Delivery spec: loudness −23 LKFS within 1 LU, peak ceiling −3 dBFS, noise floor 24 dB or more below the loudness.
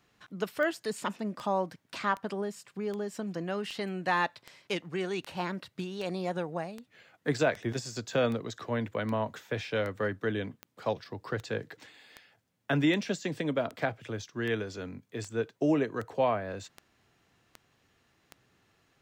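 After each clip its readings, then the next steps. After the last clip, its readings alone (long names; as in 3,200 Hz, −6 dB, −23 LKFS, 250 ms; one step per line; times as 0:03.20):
number of clicks 24; integrated loudness −33.0 LKFS; sample peak −14.5 dBFS; target loudness −23.0 LKFS
→ click removal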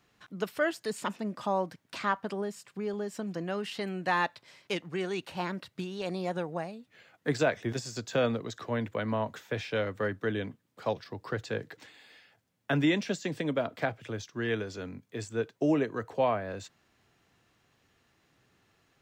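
number of clicks 0; integrated loudness −33.0 LKFS; sample peak −14.5 dBFS; target loudness −23.0 LKFS
→ level +10 dB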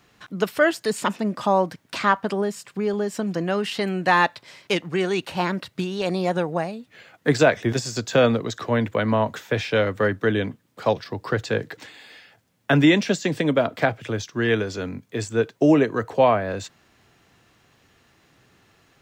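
integrated loudness −23.0 LKFS; sample peak −4.5 dBFS; background noise floor −62 dBFS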